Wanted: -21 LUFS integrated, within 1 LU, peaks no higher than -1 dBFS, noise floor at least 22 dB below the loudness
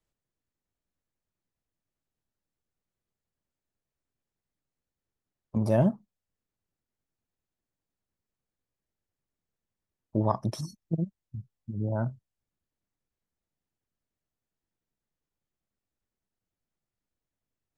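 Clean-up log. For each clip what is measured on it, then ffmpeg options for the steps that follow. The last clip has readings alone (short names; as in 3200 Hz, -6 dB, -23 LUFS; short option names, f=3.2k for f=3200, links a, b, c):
loudness -30.0 LUFS; peak -11.0 dBFS; loudness target -21.0 LUFS
-> -af "volume=9dB"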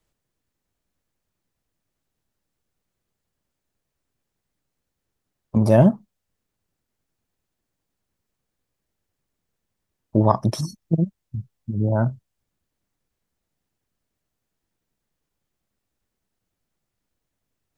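loudness -21.0 LUFS; peak -2.0 dBFS; noise floor -81 dBFS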